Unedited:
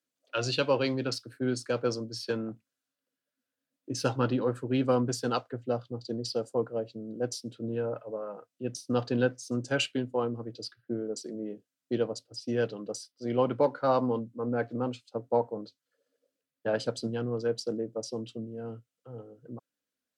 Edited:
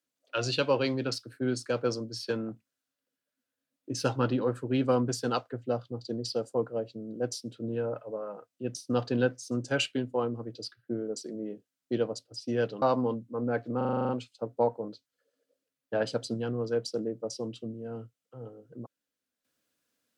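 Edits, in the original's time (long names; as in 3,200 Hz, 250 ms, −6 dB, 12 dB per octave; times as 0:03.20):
0:12.82–0:13.87: remove
0:14.82: stutter 0.04 s, 9 plays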